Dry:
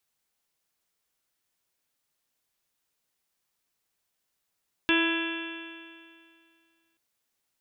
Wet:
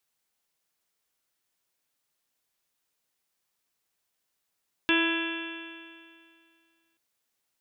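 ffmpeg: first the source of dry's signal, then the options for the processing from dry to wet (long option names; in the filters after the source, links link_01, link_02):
-f lavfi -i "aevalsrc='0.0708*pow(10,-3*t/2.24)*sin(2*PI*329.15*t)+0.0126*pow(10,-3*t/2.24)*sin(2*PI*659.22*t)+0.0237*pow(10,-3*t/2.24)*sin(2*PI*991.12*t)+0.0158*pow(10,-3*t/2.24)*sin(2*PI*1325.75*t)+0.0531*pow(10,-3*t/2.24)*sin(2*PI*1664.01*t)+0.0112*pow(10,-3*t/2.24)*sin(2*PI*2006.77*t)+0.0266*pow(10,-3*t/2.24)*sin(2*PI*2354.89*t)+0.0562*pow(10,-3*t/2.24)*sin(2*PI*2709.2*t)+0.02*pow(10,-3*t/2.24)*sin(2*PI*3070.5*t)+0.0316*pow(10,-3*t/2.24)*sin(2*PI*3439.58*t)':duration=2.08:sample_rate=44100"
-af "lowshelf=frequency=140:gain=-4"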